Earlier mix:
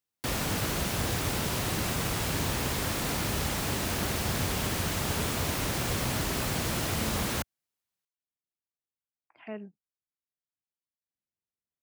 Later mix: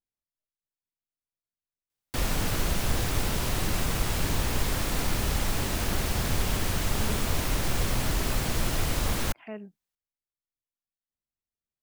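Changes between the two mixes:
background: entry +1.90 s; master: remove high-pass 79 Hz 12 dB/octave

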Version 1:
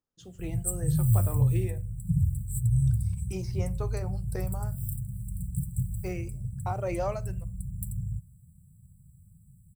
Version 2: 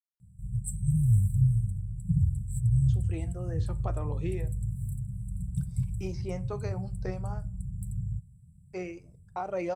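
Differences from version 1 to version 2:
speech: entry +2.70 s; master: add distance through air 63 m

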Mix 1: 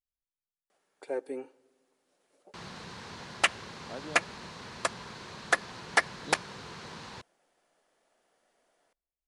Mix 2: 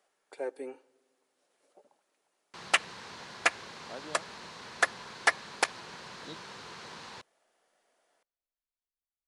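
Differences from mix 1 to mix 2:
first sound: entry -0.70 s; master: add bass shelf 240 Hz -10.5 dB

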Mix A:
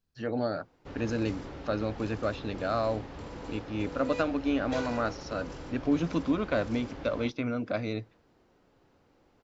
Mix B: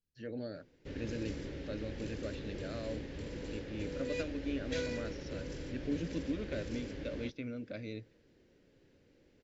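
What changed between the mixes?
speech -9.5 dB; master: add high-order bell 960 Hz -13.5 dB 1.2 oct

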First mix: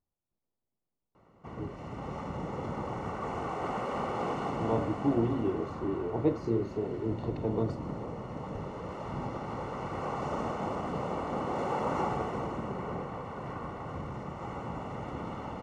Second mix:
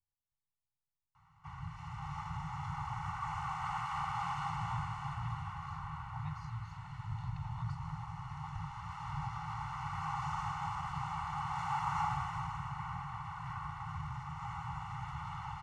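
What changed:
speech -5.5 dB; master: add Chebyshev band-stop 160–810 Hz, order 5

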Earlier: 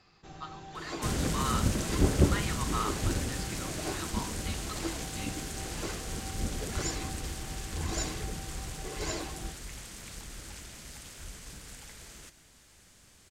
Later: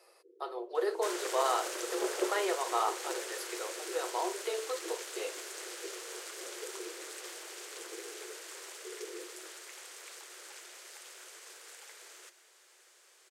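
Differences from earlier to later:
speech: remove Chebyshev band-pass 1.1–4.8 kHz, order 3; first sound: add Chebyshev low-pass 520 Hz, order 10; master: add rippled Chebyshev high-pass 350 Hz, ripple 3 dB

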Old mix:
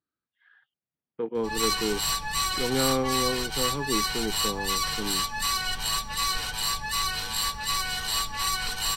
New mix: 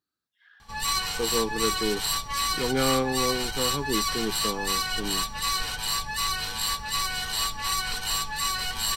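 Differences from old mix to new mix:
speech: remove distance through air 350 m; background: entry -0.75 s

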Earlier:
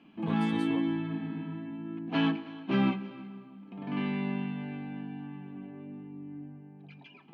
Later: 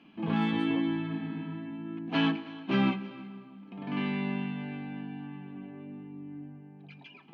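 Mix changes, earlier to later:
background: remove low-pass 1.2 kHz 6 dB/octave; master: add low-pass 1.9 kHz 6 dB/octave

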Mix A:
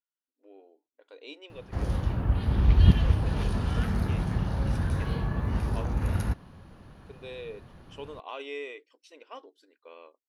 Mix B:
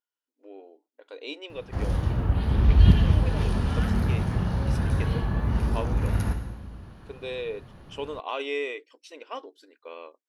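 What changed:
speech +7.5 dB; reverb: on, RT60 1.2 s

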